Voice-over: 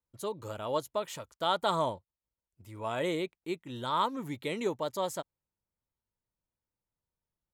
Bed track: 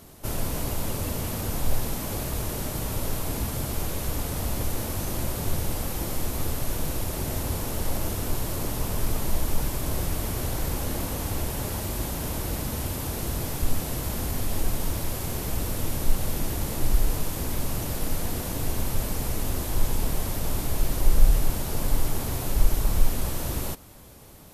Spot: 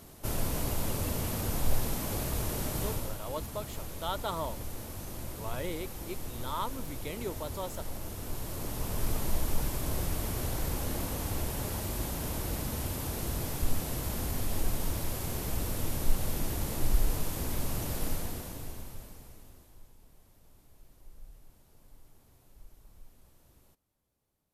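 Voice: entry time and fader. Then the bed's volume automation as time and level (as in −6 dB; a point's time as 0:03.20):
2.60 s, −6.0 dB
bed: 0:02.88 −3 dB
0:03.18 −11.5 dB
0:08.05 −11.5 dB
0:09.09 −4.5 dB
0:18.08 −4.5 dB
0:19.95 −33 dB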